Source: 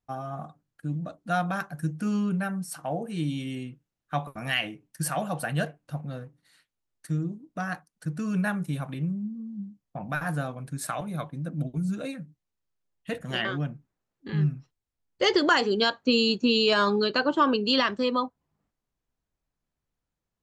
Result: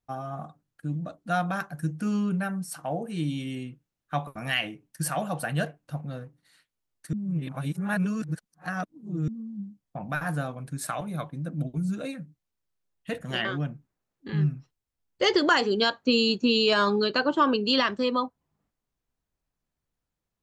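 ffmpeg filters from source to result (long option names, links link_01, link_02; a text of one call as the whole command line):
ffmpeg -i in.wav -filter_complex "[0:a]asplit=3[link_01][link_02][link_03];[link_01]atrim=end=7.132[link_04];[link_02]atrim=start=7.128:end=9.282,asetpts=PTS-STARTPTS,areverse[link_05];[link_03]atrim=start=9.278[link_06];[link_04][link_05]acrossfade=duration=0.004:curve1=hsin:curve2=hsin[link_07];[link_07][link_06]acrossfade=duration=0.004:curve1=hsin:curve2=hsin" out.wav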